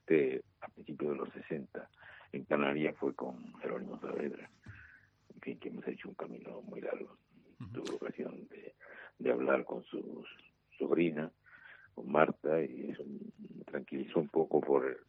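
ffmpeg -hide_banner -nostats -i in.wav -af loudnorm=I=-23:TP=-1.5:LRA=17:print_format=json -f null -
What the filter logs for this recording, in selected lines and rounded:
"input_i" : "-36.0",
"input_tp" : "-11.0",
"input_lra" : "10.3",
"input_thresh" : "-47.3",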